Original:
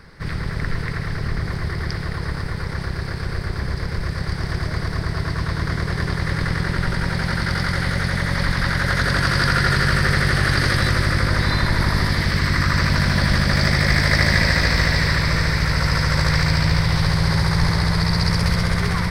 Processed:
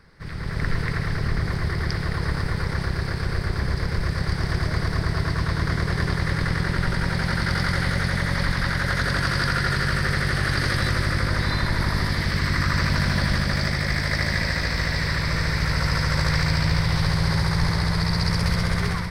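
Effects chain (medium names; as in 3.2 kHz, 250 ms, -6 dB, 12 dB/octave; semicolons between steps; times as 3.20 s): level rider; trim -9 dB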